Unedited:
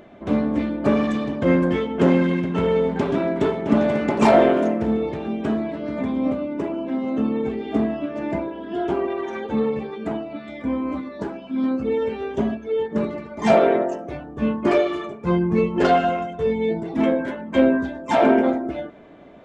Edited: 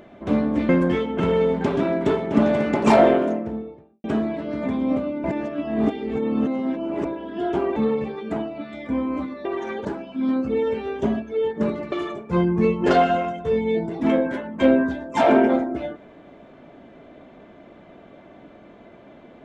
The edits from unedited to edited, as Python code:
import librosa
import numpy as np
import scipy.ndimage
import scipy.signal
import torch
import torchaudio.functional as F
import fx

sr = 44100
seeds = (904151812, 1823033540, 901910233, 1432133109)

y = fx.studio_fade_out(x, sr, start_s=4.25, length_s=1.14)
y = fx.edit(y, sr, fx.cut(start_s=0.69, length_s=0.81),
    fx.cut(start_s=2.01, length_s=0.54),
    fx.reverse_span(start_s=6.59, length_s=1.81),
    fx.move(start_s=9.11, length_s=0.4, to_s=11.2),
    fx.cut(start_s=13.27, length_s=1.59), tone=tone)